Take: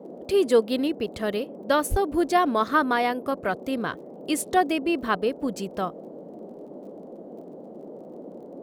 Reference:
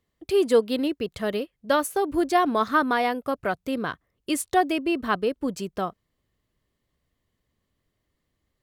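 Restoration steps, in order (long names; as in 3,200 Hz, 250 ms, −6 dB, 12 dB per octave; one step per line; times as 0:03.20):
click removal
0:01.90–0:02.02: high-pass filter 140 Hz 24 dB per octave
noise reduction from a noise print 30 dB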